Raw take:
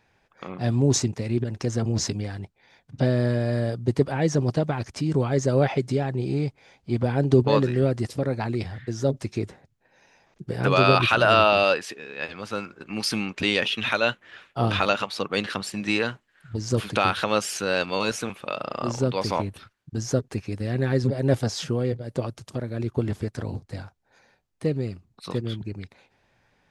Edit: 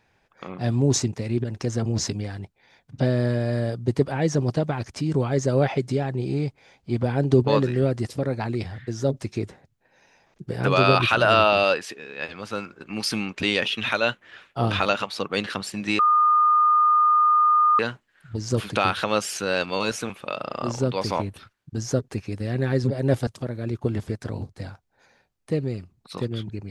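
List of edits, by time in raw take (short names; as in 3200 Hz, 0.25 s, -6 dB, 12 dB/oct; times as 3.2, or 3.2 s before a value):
15.99 add tone 1220 Hz -14.5 dBFS 1.80 s
21.47–22.4 cut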